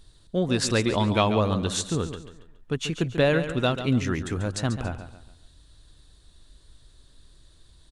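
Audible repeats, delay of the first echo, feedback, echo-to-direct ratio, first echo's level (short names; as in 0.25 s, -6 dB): 3, 0.14 s, 37%, -10.0 dB, -10.5 dB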